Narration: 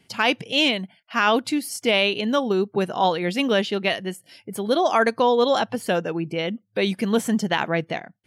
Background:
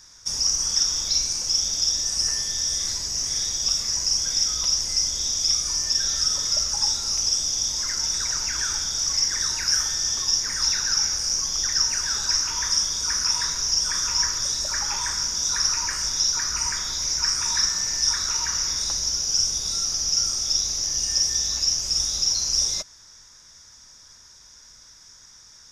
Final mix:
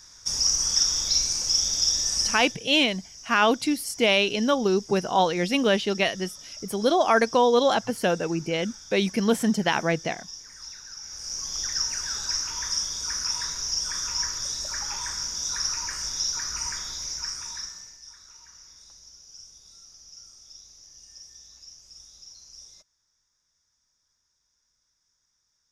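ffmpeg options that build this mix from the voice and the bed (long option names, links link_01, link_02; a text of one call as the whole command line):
ffmpeg -i stem1.wav -i stem2.wav -filter_complex "[0:a]adelay=2150,volume=-1dB[link_01];[1:a]volume=13dB,afade=type=out:start_time=2.17:duration=0.4:silence=0.11885,afade=type=in:start_time=11.02:duration=0.55:silence=0.211349,afade=type=out:start_time=16.74:duration=1.25:silence=0.105925[link_02];[link_01][link_02]amix=inputs=2:normalize=0" out.wav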